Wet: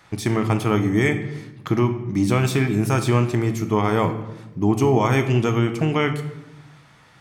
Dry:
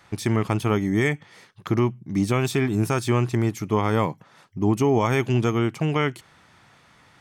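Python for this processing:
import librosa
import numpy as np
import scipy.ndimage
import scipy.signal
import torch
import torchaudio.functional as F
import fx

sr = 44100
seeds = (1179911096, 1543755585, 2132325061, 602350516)

y = fx.room_shoebox(x, sr, seeds[0], volume_m3=390.0, walls='mixed', distance_m=0.56)
y = F.gain(torch.from_numpy(y), 1.5).numpy()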